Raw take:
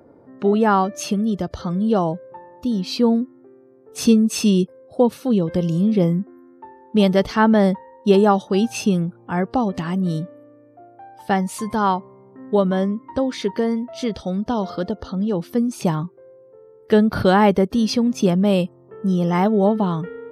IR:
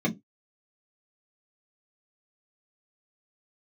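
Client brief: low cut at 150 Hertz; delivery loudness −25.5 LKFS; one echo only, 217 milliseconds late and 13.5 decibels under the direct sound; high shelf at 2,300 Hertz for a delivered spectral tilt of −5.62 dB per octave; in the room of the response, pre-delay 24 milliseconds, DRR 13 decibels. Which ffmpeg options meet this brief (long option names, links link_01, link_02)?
-filter_complex "[0:a]highpass=150,highshelf=frequency=2300:gain=8.5,aecho=1:1:217:0.211,asplit=2[link_01][link_02];[1:a]atrim=start_sample=2205,adelay=24[link_03];[link_02][link_03]afir=irnorm=-1:irlink=0,volume=-22.5dB[link_04];[link_01][link_04]amix=inputs=2:normalize=0,volume=-9dB"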